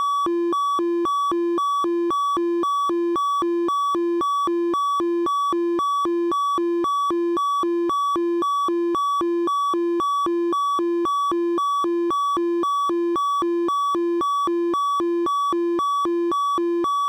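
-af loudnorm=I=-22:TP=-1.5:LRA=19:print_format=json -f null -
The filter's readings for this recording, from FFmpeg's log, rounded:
"input_i" : "-21.6",
"input_tp" : "-16.6",
"input_lra" : "0.0",
"input_thresh" : "-31.6",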